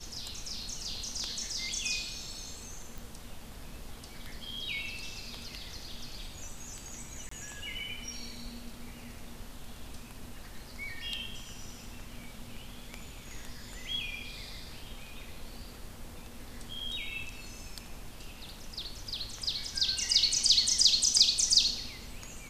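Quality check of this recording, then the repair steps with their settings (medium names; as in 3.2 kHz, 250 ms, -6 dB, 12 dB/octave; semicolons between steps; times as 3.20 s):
2.98 s: pop
7.29–7.31 s: dropout 24 ms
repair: de-click; interpolate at 7.29 s, 24 ms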